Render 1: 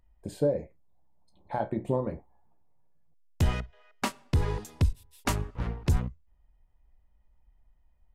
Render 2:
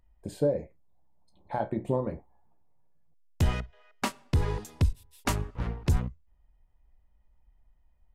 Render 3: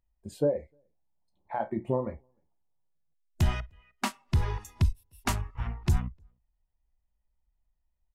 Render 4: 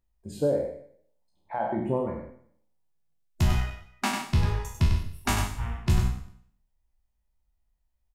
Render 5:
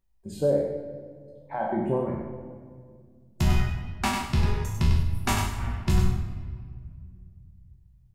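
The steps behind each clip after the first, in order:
no processing that can be heard
slap from a distant wall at 52 metres, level −28 dB; noise reduction from a noise print of the clip's start 13 dB
peak hold with a decay on every bin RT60 0.60 s; single-tap delay 98 ms −6.5 dB
rectangular room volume 4,000 cubic metres, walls mixed, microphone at 1.1 metres

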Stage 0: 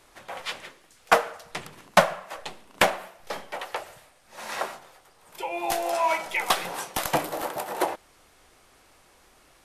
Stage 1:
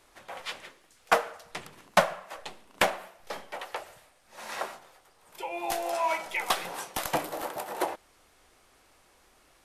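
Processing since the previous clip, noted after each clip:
parametric band 140 Hz −2.5 dB 0.76 octaves
level −4 dB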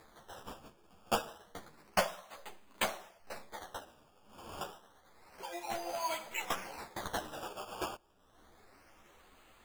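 sample-and-hold swept by an LFO 15×, swing 100% 0.29 Hz
upward compression, threshold −44 dBFS
string-ensemble chorus
level −5 dB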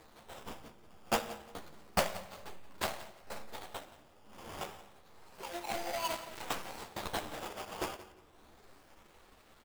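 gap after every zero crossing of 0.25 ms
repeating echo 175 ms, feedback 22%, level −17 dB
convolution reverb RT60 1.4 s, pre-delay 13 ms, DRR 14 dB
level +2.5 dB

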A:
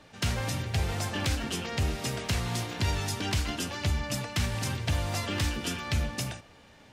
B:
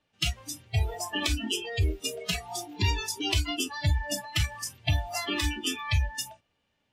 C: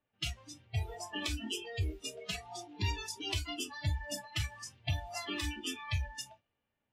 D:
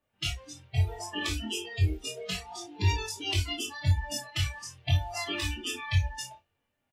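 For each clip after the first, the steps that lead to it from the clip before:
noise reduction from a noise print of the clip's start 26 dB; parametric band 2,900 Hz +6.5 dB 0.49 octaves; level +4 dB
flanger 1.2 Hz, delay 8 ms, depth 1.8 ms, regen −59%; low-pass that shuts in the quiet parts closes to 2,200 Hz, open at −29.5 dBFS; level −4 dB
multi-voice chorus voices 4, 0.3 Hz, delay 22 ms, depth 1.6 ms; double-tracking delay 32 ms −8 dB; level +7.5 dB

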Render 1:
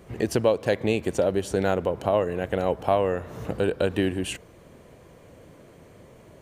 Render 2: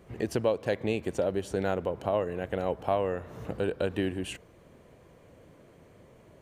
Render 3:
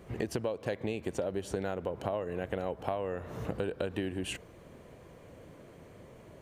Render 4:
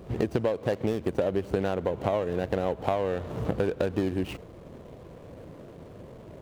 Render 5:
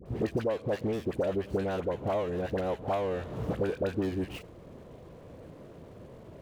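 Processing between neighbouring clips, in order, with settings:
bass and treble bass 0 dB, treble −3 dB; level −5.5 dB
downward compressor 6 to 1, threshold −33 dBFS, peak gain reduction 12 dB; level +3 dB
running median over 25 samples; level +7.5 dB
all-pass dispersion highs, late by 60 ms, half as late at 1,000 Hz; level −3 dB

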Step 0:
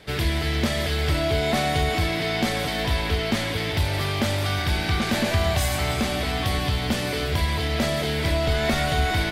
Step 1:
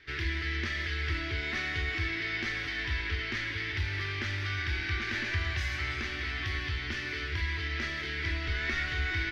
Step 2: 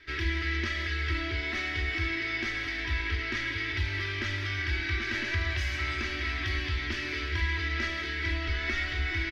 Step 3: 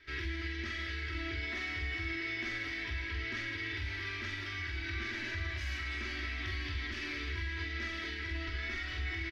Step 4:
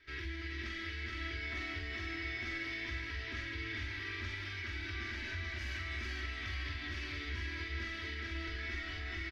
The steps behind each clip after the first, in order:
drawn EQ curve 100 Hz 0 dB, 180 Hz −16 dB, 360 Hz +1 dB, 510 Hz −16 dB, 720 Hz −16 dB, 1,800 Hz +9 dB, 3,600 Hz −2 dB, 5,900 Hz −2 dB, 8,300 Hz −22 dB; level −9 dB
comb filter 3.1 ms, depth 64%; speech leveller 2 s
brickwall limiter −25.5 dBFS, peak gain reduction 7 dB; double-tracking delay 45 ms −4 dB; level −5.5 dB
single-tap delay 425 ms −3.5 dB; level −4 dB

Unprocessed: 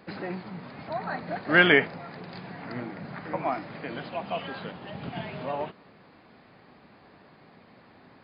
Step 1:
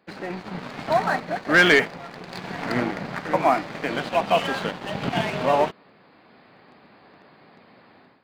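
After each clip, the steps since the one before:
low-shelf EQ 120 Hz −10.5 dB
leveller curve on the samples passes 2
automatic gain control gain up to 13.5 dB
level −6 dB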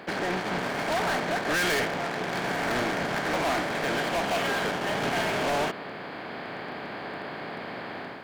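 compressor on every frequency bin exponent 0.6
hard clipping −22 dBFS, distortion −5 dB
level −2 dB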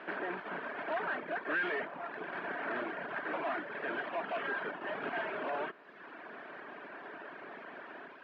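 linear delta modulator 64 kbit/s, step −34 dBFS
loudspeaker in its box 420–2,200 Hz, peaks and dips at 510 Hz −8 dB, 800 Hz −9 dB, 1,200 Hz −4 dB, 2,100 Hz −8 dB
reverb reduction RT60 1.3 s
level −1.5 dB

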